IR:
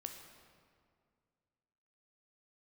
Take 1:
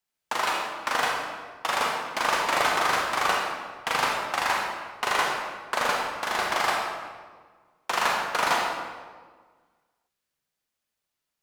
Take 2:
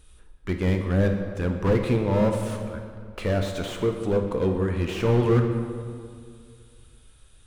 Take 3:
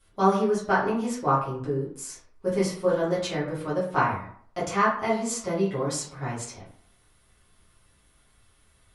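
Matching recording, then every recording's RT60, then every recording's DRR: 2; 1.5, 2.1, 0.60 seconds; −1.5, 4.0, −10.0 decibels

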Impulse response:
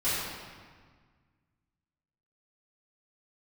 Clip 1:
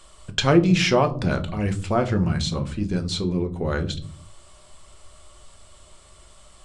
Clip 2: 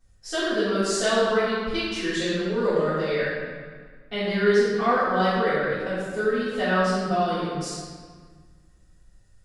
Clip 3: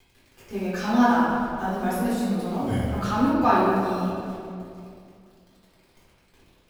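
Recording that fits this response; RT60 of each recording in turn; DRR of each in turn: 2; 0.50, 1.6, 2.5 seconds; 6.0, −15.5, −10.5 decibels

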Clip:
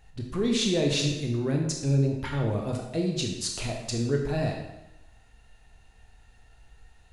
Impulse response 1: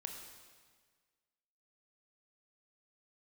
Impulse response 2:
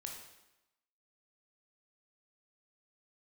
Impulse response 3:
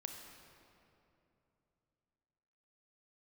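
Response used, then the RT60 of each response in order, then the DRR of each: 2; 1.6, 0.95, 2.9 seconds; 2.5, 0.5, 3.0 decibels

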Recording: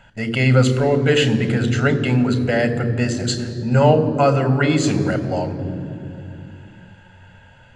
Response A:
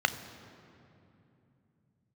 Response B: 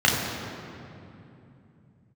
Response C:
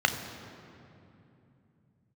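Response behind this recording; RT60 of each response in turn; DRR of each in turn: A; 2.8, 2.8, 2.8 seconds; 10.0, −4.0, 6.0 decibels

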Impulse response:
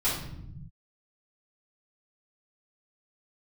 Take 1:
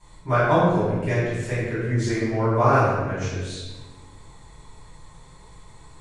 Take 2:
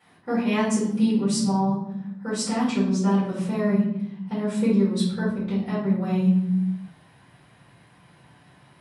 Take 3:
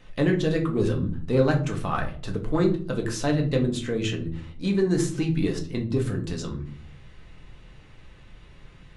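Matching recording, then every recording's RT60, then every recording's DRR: 2; 1.4, 0.80, 0.45 seconds; −13.5, −11.5, 1.5 decibels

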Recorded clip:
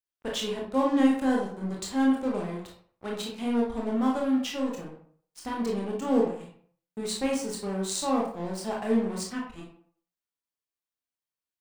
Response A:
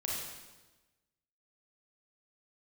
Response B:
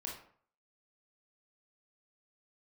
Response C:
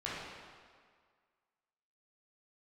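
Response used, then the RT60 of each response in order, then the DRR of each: B; 1.2, 0.55, 1.8 seconds; −4.0, −2.5, −8.5 decibels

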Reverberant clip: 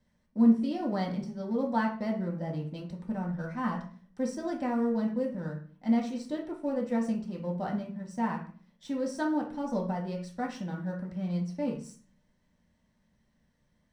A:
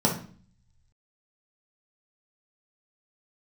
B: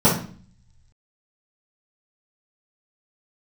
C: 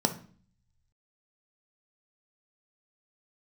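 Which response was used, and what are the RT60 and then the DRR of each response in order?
A; 0.45, 0.45, 0.45 seconds; −2.5, −12.0, 6.0 decibels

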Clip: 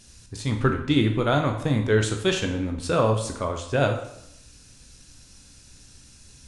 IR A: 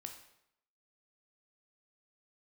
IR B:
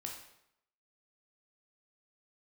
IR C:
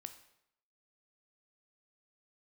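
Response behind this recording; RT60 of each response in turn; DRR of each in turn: A; 0.75, 0.75, 0.75 seconds; 4.0, 0.0, 8.0 decibels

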